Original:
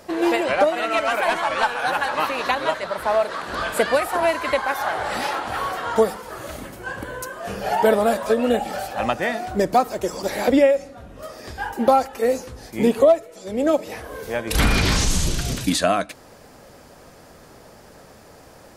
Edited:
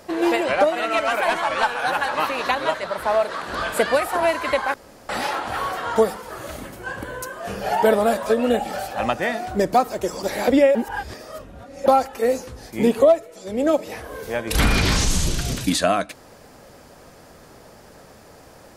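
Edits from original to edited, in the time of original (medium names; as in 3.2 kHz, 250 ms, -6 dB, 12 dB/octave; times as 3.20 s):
4.74–5.09 s: room tone
10.75–11.86 s: reverse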